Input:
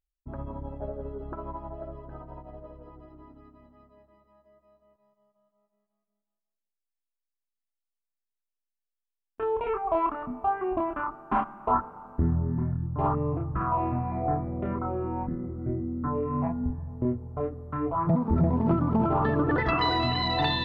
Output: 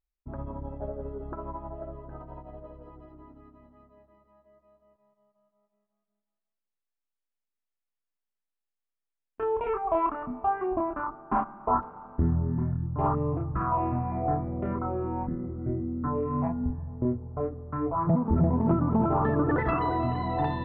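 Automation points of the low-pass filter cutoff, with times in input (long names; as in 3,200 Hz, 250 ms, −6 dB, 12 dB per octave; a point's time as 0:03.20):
2,300 Hz
from 0:02.21 3,900 Hz
from 0:03.12 2,700 Hz
from 0:10.66 1,500 Hz
from 0:11.83 2,500 Hz
from 0:17.00 1,700 Hz
from 0:19.79 1,100 Hz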